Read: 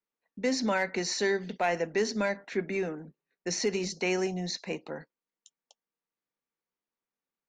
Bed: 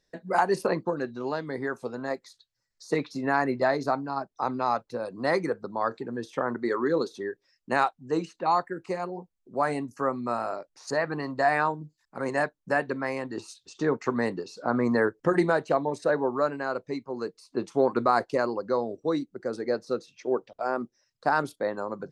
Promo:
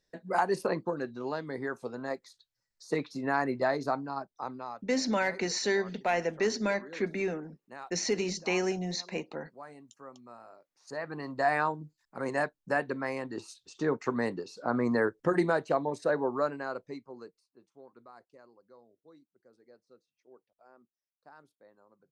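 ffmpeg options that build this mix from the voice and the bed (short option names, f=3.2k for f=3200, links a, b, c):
-filter_complex "[0:a]adelay=4450,volume=-0.5dB[a];[1:a]volume=13.5dB,afade=t=out:st=4.04:d=0.79:silence=0.141254,afade=t=in:st=10.7:d=0.78:silence=0.133352,afade=t=out:st=16.39:d=1.13:silence=0.0446684[b];[a][b]amix=inputs=2:normalize=0"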